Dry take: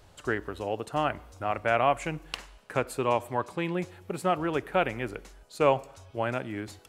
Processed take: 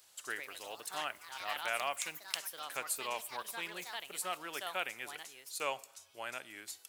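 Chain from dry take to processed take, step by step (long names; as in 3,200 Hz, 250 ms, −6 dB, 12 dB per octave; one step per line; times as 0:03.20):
first difference
delay with pitch and tempo change per echo 162 ms, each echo +4 semitones, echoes 3, each echo −6 dB
level +5 dB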